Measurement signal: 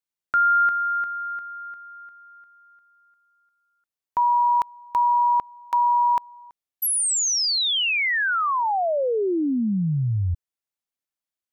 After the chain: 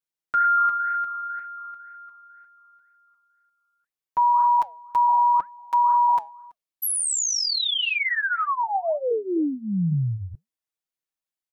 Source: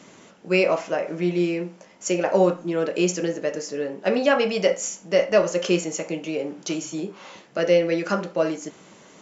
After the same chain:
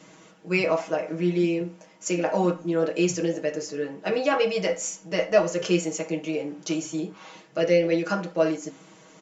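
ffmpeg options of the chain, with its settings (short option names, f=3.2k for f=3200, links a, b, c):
-af "aecho=1:1:6.3:0.85,flanger=delay=1.9:depth=3.6:regen=-88:speed=2:shape=sinusoidal"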